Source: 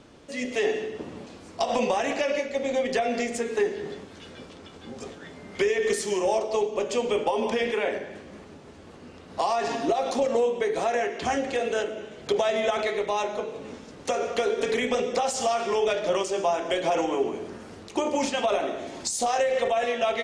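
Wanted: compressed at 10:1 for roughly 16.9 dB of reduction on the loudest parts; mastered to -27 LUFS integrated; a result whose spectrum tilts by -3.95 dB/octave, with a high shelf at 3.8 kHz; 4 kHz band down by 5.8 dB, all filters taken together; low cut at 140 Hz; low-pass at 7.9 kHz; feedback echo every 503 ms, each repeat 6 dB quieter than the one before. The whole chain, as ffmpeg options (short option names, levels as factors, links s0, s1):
-af "highpass=140,lowpass=7900,highshelf=f=3800:g=-3,equalizer=f=4000:t=o:g=-6,acompressor=threshold=0.0126:ratio=10,aecho=1:1:503|1006|1509|2012|2515|3018:0.501|0.251|0.125|0.0626|0.0313|0.0157,volume=5.01"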